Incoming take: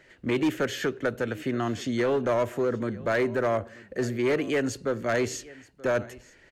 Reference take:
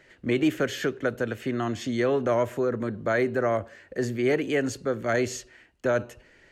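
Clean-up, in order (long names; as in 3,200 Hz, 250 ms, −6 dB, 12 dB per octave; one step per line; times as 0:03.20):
clipped peaks rebuilt −19.5 dBFS
echo removal 930 ms −22 dB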